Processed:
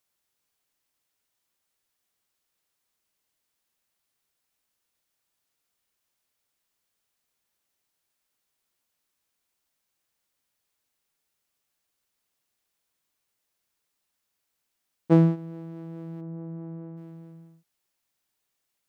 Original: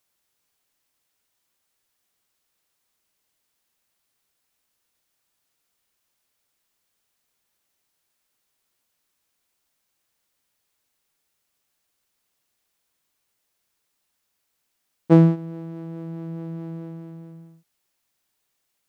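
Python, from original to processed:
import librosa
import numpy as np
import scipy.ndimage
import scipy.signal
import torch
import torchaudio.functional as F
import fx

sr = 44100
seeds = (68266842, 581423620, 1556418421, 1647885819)

y = fx.lowpass(x, sr, hz=fx.line((16.2, 1100.0), (16.96, 1500.0)), slope=12, at=(16.2, 16.96), fade=0.02)
y = y * 10.0 ** (-4.5 / 20.0)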